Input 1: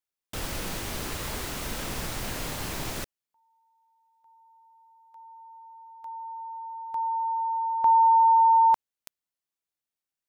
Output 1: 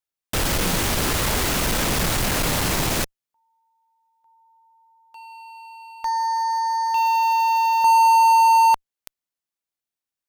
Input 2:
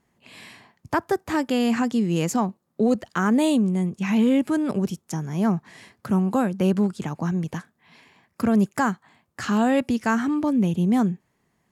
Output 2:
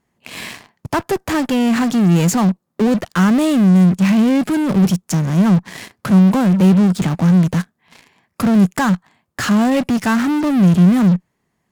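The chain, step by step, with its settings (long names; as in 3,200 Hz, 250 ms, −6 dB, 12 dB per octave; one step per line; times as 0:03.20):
in parallel at −8.5 dB: fuzz pedal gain 40 dB, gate −47 dBFS
on the sum: dynamic equaliser 180 Hz, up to +8 dB, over −33 dBFS, Q 3.8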